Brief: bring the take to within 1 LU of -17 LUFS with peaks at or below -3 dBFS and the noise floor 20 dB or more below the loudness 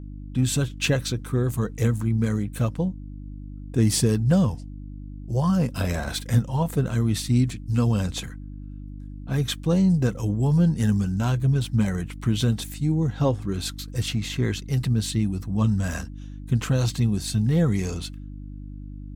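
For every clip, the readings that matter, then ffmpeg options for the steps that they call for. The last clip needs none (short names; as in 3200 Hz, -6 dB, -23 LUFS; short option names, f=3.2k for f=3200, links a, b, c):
hum 50 Hz; harmonics up to 300 Hz; hum level -35 dBFS; loudness -24.0 LUFS; peak -9.5 dBFS; loudness target -17.0 LUFS
-> -af "bandreject=f=50:t=h:w=4,bandreject=f=100:t=h:w=4,bandreject=f=150:t=h:w=4,bandreject=f=200:t=h:w=4,bandreject=f=250:t=h:w=4,bandreject=f=300:t=h:w=4"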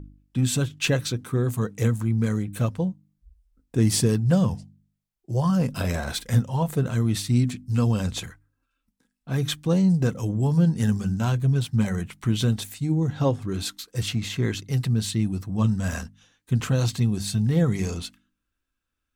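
hum none; loudness -24.5 LUFS; peak -9.5 dBFS; loudness target -17.0 LUFS
-> -af "volume=7.5dB,alimiter=limit=-3dB:level=0:latency=1"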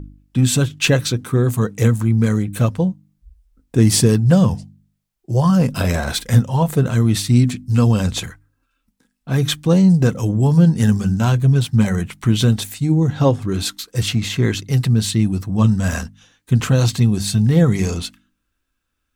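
loudness -17.0 LUFS; peak -3.0 dBFS; noise floor -73 dBFS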